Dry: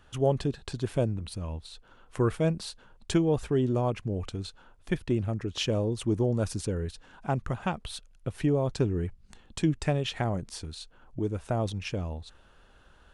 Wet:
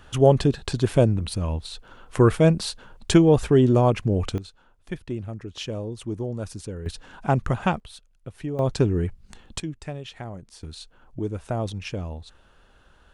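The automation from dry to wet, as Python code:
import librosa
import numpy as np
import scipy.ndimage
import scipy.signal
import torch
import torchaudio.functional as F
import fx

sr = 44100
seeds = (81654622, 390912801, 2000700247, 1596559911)

y = fx.gain(x, sr, db=fx.steps((0.0, 9.0), (4.38, -3.5), (6.86, 7.5), (7.8, -5.0), (8.59, 6.0), (9.6, -7.0), (10.63, 1.5)))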